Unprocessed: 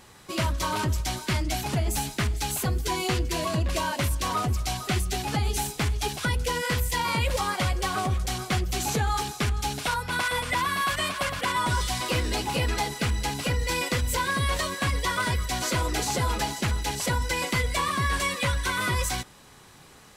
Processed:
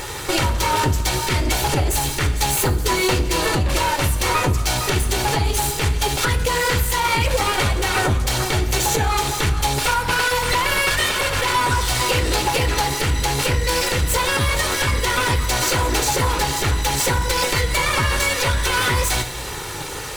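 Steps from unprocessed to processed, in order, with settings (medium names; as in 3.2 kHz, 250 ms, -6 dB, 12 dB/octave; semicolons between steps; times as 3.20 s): comb filter that takes the minimum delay 2.2 ms; on a send at -9 dB: reverberation RT60 0.75 s, pre-delay 7 ms; on the sum: compression 6:1, threshold -40 dBFS, peak gain reduction 16.5 dB; band-stop 5.2 kHz, Q 18; loudness maximiser +31 dB; trim -8 dB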